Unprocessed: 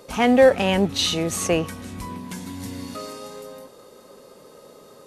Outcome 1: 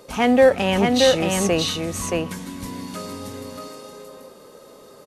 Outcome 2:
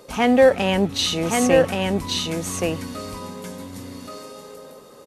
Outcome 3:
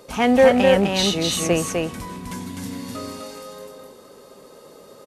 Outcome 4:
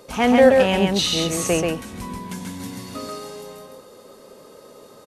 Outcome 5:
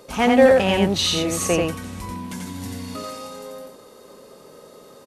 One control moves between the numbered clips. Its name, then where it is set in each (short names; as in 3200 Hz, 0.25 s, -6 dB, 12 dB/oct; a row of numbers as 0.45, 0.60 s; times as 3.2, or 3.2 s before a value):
echo, time: 625, 1126, 254, 135, 88 ms